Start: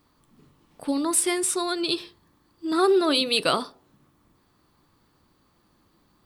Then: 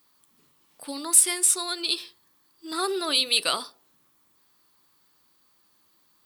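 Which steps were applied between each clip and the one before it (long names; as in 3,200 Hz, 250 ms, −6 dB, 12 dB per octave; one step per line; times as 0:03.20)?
spectral tilt +3.5 dB per octave
level −5 dB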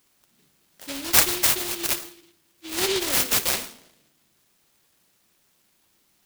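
convolution reverb RT60 0.90 s, pre-delay 5 ms, DRR 8 dB
short delay modulated by noise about 3,200 Hz, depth 0.3 ms
level +1 dB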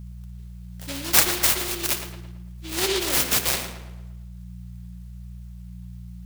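hum with harmonics 60 Hz, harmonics 3, −38 dBFS −5 dB per octave
tape delay 113 ms, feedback 51%, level −8 dB, low-pass 2,800 Hz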